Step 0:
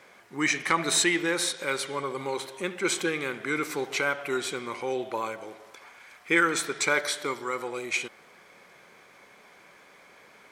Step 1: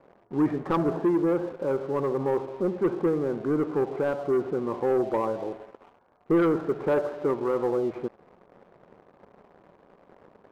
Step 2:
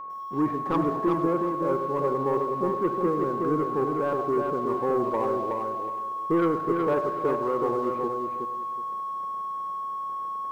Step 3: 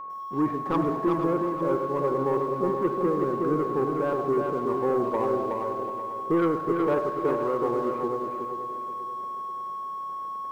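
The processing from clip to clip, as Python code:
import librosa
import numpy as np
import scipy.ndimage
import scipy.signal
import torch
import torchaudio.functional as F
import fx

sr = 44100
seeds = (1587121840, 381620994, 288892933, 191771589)

y1 = scipy.signal.sosfilt(scipy.signal.bessel(6, 650.0, 'lowpass', norm='mag', fs=sr, output='sos'), x)
y1 = fx.leveller(y1, sr, passes=2)
y1 = fx.rider(y1, sr, range_db=4, speed_s=2.0)
y1 = F.gain(torch.from_numpy(y1), 2.0).numpy()
y2 = y1 + 10.0 ** (-33.0 / 20.0) * np.sin(2.0 * np.pi * 1100.0 * np.arange(len(y1)) / sr)
y2 = fx.echo_feedback(y2, sr, ms=369, feedback_pct=22, wet_db=-4.5)
y2 = fx.echo_crushed(y2, sr, ms=100, feedback_pct=35, bits=8, wet_db=-14.5)
y2 = F.gain(torch.from_numpy(y2), -2.0).numpy()
y3 = fx.echo_feedback(y2, sr, ms=484, feedback_pct=41, wet_db=-11)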